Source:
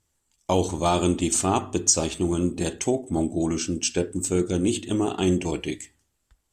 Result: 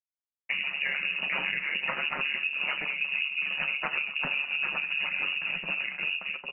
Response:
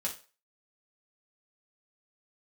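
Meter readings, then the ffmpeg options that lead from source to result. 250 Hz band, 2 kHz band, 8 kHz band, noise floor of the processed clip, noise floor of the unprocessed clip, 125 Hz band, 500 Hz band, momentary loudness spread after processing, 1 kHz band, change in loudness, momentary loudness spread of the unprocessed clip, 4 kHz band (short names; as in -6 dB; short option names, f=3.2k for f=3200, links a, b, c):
-26.0 dB, +13.5 dB, under -40 dB, under -85 dBFS, -74 dBFS, -24.0 dB, -20.5 dB, 2 LU, -10.0 dB, -4.0 dB, 6 LU, +0.5 dB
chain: -filter_complex "[0:a]aecho=1:1:87|233|799:0.376|0.158|0.631,asplit=2[a][b];[b]alimiter=limit=-12.5dB:level=0:latency=1,volume=1dB[c];[a][c]amix=inputs=2:normalize=0,acrusher=samples=9:mix=1:aa=0.000001:lfo=1:lforange=5.4:lforate=2.1,flanger=delay=1.1:depth=9.6:regen=-31:speed=1.7:shape=sinusoidal,aeval=exprs='sgn(val(0))*max(abs(val(0))-0.00266,0)':c=same,lowpass=f=2.5k:t=q:w=0.5098,lowpass=f=2.5k:t=q:w=0.6013,lowpass=f=2.5k:t=q:w=0.9,lowpass=f=2.5k:t=q:w=2.563,afreqshift=-2900,flanger=delay=6.1:depth=2.8:regen=42:speed=0.46:shape=triangular,equalizer=f=88:w=1.4:g=12,acompressor=threshold=-26dB:ratio=6,aeval=exprs='val(0)*sin(2*PI*71*n/s)':c=same,lowshelf=f=120:t=q:w=1.5:g=-7.5,asplit=2[d][e];[1:a]atrim=start_sample=2205,lowpass=8.2k[f];[e][f]afir=irnorm=-1:irlink=0,volume=-9.5dB[g];[d][g]amix=inputs=2:normalize=0"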